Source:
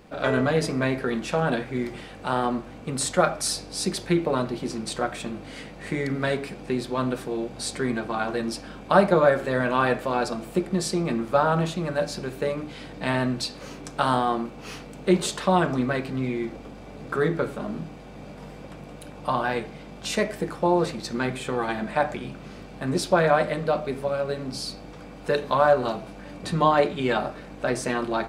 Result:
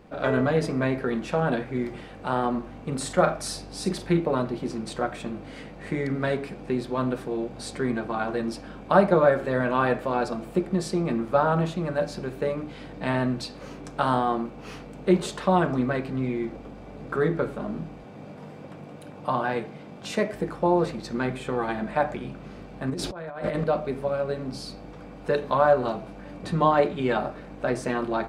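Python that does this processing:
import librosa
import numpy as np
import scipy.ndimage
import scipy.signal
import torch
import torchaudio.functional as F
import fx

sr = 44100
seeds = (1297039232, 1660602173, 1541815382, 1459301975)

y = fx.doubler(x, sr, ms=42.0, db=-8.5, at=(2.51, 4.2))
y = fx.highpass(y, sr, hz=90.0, slope=24, at=(18.04, 20.34))
y = fx.over_compress(y, sr, threshold_db=-31.0, ratio=-1.0, at=(22.9, 23.64))
y = fx.high_shelf(y, sr, hz=2600.0, db=-8.5)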